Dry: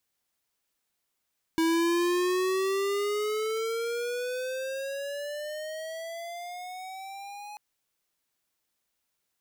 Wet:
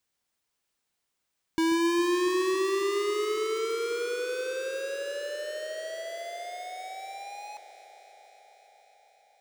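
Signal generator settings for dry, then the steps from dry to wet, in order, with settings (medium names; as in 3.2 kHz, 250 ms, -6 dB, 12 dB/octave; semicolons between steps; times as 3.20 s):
gliding synth tone square, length 5.99 s, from 324 Hz, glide +16.5 st, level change -18 dB, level -24 dB
peaking EQ 13 kHz -12 dB 0.28 oct; echo whose repeats swap between lows and highs 137 ms, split 1.2 kHz, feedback 88%, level -13 dB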